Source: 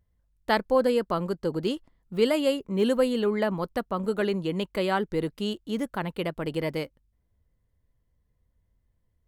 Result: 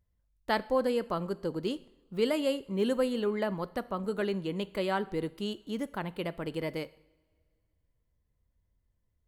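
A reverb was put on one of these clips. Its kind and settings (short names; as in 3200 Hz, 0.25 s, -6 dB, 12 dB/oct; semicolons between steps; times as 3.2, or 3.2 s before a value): two-slope reverb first 0.68 s, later 2.4 s, from -20 dB, DRR 16 dB; gain -5 dB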